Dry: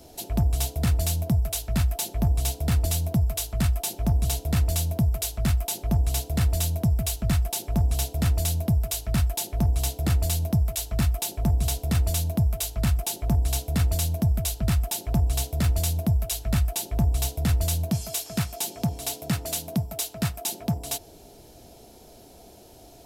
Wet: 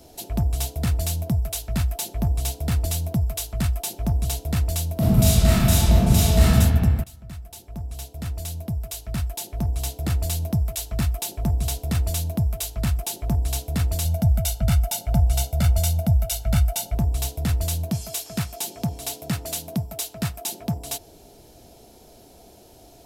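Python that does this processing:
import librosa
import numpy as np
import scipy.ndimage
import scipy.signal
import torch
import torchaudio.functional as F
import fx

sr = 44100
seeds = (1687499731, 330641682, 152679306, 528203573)

y = fx.reverb_throw(x, sr, start_s=4.94, length_s=1.54, rt60_s=2.0, drr_db=-10.0)
y = fx.comb(y, sr, ms=1.4, depth=0.74, at=(14.05, 16.95))
y = fx.edit(y, sr, fx.fade_in_from(start_s=7.04, length_s=3.44, floor_db=-19.5), tone=tone)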